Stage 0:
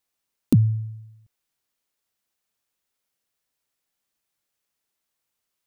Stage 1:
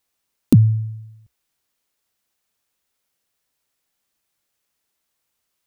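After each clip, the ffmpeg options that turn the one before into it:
ffmpeg -i in.wav -af "equalizer=frequency=66:width_type=o:width=0.39:gain=4,volume=5dB" out.wav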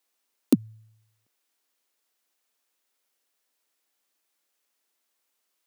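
ffmpeg -i in.wav -af "highpass=frequency=250:width=0.5412,highpass=frequency=250:width=1.3066,volume=-1.5dB" out.wav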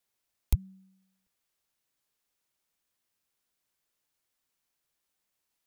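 ffmpeg -i in.wav -af "afreqshift=-300,volume=-5dB" out.wav

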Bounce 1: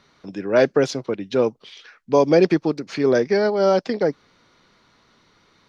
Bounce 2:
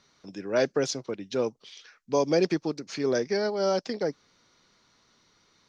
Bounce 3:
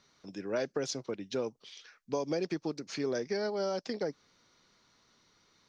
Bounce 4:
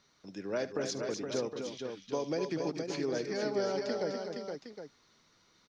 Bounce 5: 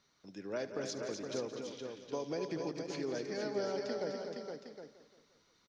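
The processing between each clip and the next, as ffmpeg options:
ffmpeg -i in.wav -af "equalizer=frequency=6200:width=1.1:gain=10,volume=-8.5dB" out.wav
ffmpeg -i in.wav -af "acompressor=threshold=-26dB:ratio=6,volume=-3dB" out.wav
ffmpeg -i in.wav -af "aecho=1:1:73|248|260|469|764:0.158|0.398|0.266|0.531|0.299,volume=-1.5dB" out.wav
ffmpeg -i in.wav -af "aecho=1:1:173|346|519|692|865:0.237|0.123|0.0641|0.0333|0.0173,volume=-4.5dB" out.wav

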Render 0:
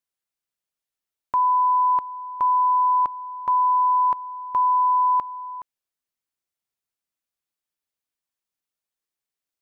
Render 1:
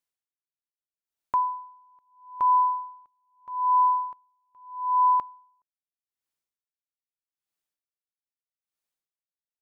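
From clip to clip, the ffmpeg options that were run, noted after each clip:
ffmpeg -i in.wav -af "aeval=exprs='val(0)*pow(10,-39*(0.5-0.5*cos(2*PI*0.79*n/s))/20)':channel_layout=same" out.wav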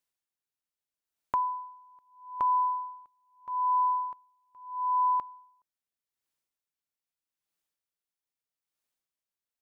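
ffmpeg -i in.wav -af "acompressor=threshold=-31dB:ratio=2,volume=1.5dB" out.wav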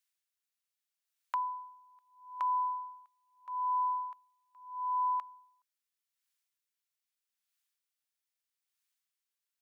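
ffmpeg -i in.wav -af "highpass=1500,volume=2.5dB" out.wav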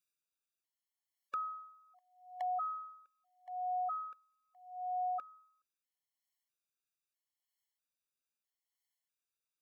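ffmpeg -i in.wav -af "aeval=exprs='val(0)*sin(2*PI*270*n/s)':channel_layout=same,afftfilt=real='re*gt(sin(2*PI*0.77*pts/sr)*(1-2*mod(floor(b*sr/1024/570),2)),0)':imag='im*gt(sin(2*PI*0.77*pts/sr)*(1-2*mod(floor(b*sr/1024/570),2)),0)':win_size=1024:overlap=0.75,volume=1dB" out.wav

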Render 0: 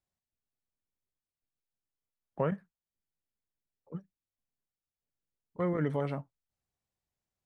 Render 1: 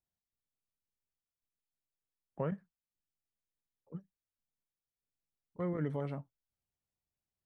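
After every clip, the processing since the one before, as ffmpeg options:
ffmpeg -i in.wav -af "lowshelf=frequency=420:gain=5,volume=-8dB" out.wav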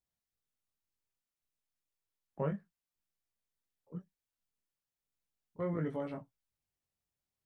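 ffmpeg -i in.wav -af "flanger=delay=17.5:depth=7.5:speed=0.33,volume=3.5dB" out.wav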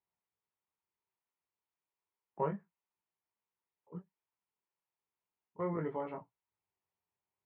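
ffmpeg -i in.wav -af "highpass=110,equalizer=frequency=140:width_type=q:width=4:gain=-7,equalizer=frequency=260:width_type=q:width=4:gain=-9,equalizer=frequency=390:width_type=q:width=4:gain=4,equalizer=frequency=560:width_type=q:width=4:gain=-3,equalizer=frequency=940:width_type=q:width=4:gain=9,equalizer=frequency=1600:width_type=q:width=4:gain=-4,lowpass=frequency=2600:width=0.5412,lowpass=frequency=2600:width=1.3066,volume=1dB" out.wav

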